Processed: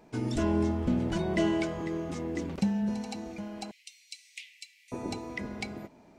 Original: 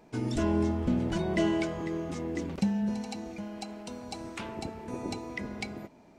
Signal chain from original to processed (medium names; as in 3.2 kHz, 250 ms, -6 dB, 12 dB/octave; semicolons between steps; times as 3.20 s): 3.71–4.92 s: steep high-pass 2 kHz 96 dB/octave